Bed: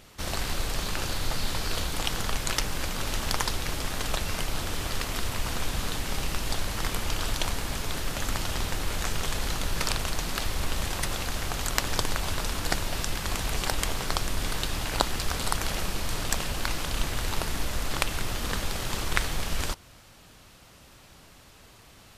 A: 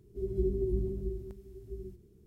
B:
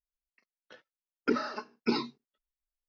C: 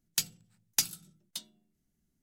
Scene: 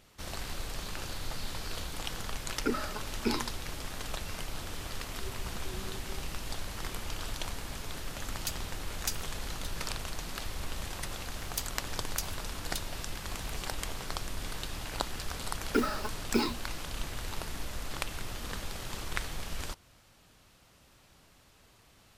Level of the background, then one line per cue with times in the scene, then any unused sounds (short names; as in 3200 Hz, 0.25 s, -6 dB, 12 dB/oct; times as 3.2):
bed -8.5 dB
1.38 add B -3 dB
5.03 add A -10 dB + endless flanger 5.3 ms +0.97 Hz
8.29 add C -7.5 dB
11.4 add C -4.5 dB + three-band squash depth 100%
14.47 add B + block floating point 5-bit